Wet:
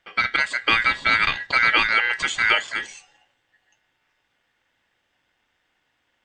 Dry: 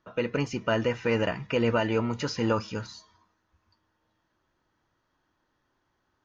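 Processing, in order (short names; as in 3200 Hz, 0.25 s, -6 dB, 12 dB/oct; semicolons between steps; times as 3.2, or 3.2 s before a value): ring modulator 1800 Hz; dynamic EQ 3000 Hz, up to +5 dB, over -40 dBFS, Q 1.2; gain +7 dB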